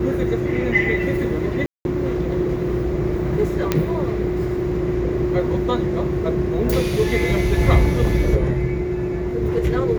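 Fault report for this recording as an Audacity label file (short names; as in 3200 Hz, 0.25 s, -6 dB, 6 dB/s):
1.660000	1.850000	gap 0.191 s
3.720000	3.720000	pop -4 dBFS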